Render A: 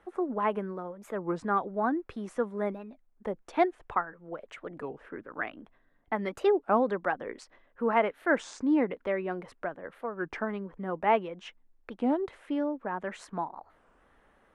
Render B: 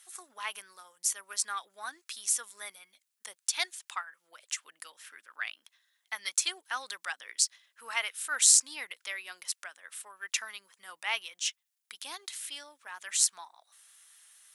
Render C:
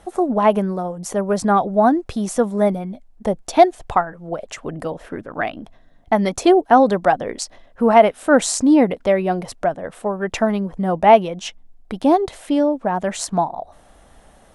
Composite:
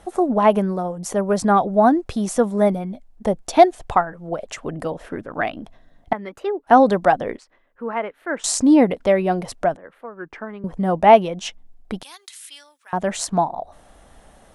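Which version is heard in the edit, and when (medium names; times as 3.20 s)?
C
6.13–6.67 s: from A
7.37–8.44 s: from A
9.77–10.64 s: from A
12.03–12.93 s: from B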